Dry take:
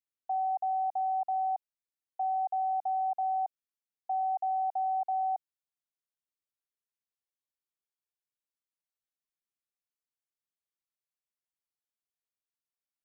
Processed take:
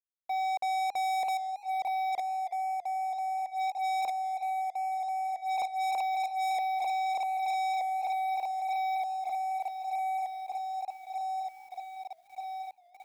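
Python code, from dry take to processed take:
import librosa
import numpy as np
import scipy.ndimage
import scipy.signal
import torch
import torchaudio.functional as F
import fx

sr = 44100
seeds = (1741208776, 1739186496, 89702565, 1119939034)

p1 = fx.fade_in_head(x, sr, length_s=2.38)
p2 = p1 + fx.echo_swing(p1, sr, ms=1225, ratio=3, feedback_pct=55, wet_db=-5.5, dry=0)
p3 = fx.gate_flip(p2, sr, shuts_db=-32.0, range_db=-25)
p4 = fx.leveller(p3, sr, passes=5)
p5 = 10.0 ** (-34.5 / 20.0) * np.tanh(p4 / 10.0 ** (-34.5 / 20.0))
p6 = fx.dynamic_eq(p5, sr, hz=580.0, q=1.1, threshold_db=-51.0, ratio=4.0, max_db=5)
p7 = fx.echo_warbled(p6, sr, ms=403, feedback_pct=34, rate_hz=2.8, cents=135, wet_db=-23)
y = F.gain(torch.from_numpy(p7), 3.5).numpy()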